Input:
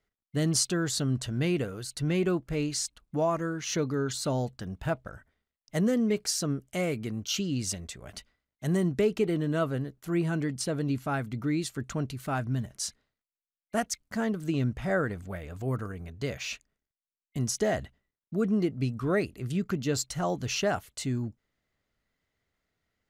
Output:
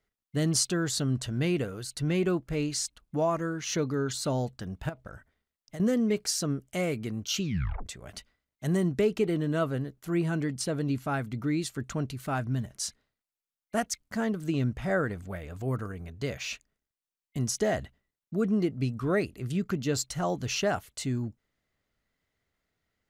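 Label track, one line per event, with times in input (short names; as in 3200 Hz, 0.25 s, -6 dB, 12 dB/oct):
4.890000	5.800000	compressor 12:1, threshold -36 dBFS
7.400000	7.400000	tape stop 0.46 s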